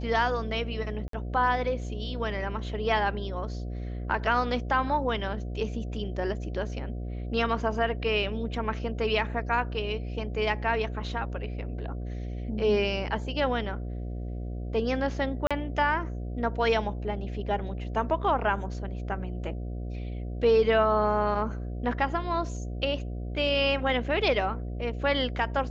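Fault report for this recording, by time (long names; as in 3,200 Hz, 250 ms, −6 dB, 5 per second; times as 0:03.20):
mains buzz 60 Hz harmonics 12 −34 dBFS
0:01.08–0:01.13: drop-out 53 ms
0:15.47–0:15.51: drop-out 36 ms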